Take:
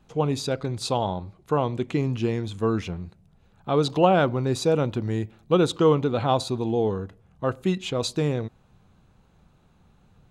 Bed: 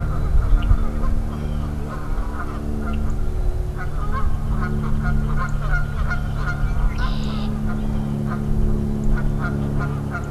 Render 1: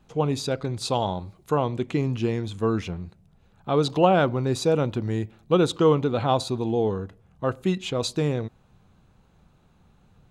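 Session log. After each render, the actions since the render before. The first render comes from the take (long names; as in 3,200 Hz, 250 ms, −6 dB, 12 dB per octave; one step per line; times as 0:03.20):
0:00.93–0:01.55: high-shelf EQ 4,700 Hz +9.5 dB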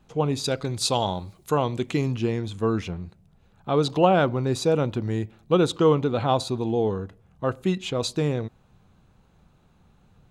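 0:00.44–0:02.13: high-shelf EQ 3,100 Hz +9 dB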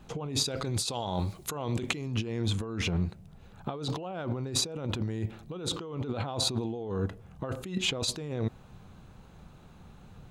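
brickwall limiter −14 dBFS, peak gain reduction 9.5 dB
compressor whose output falls as the input rises −33 dBFS, ratio −1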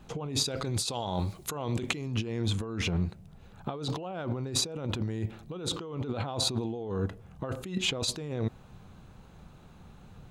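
no processing that can be heard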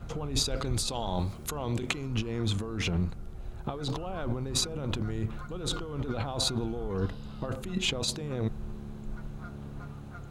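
mix in bed −19.5 dB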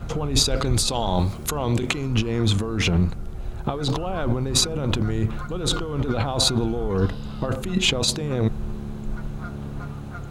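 level +9 dB
brickwall limiter −1 dBFS, peak gain reduction 3 dB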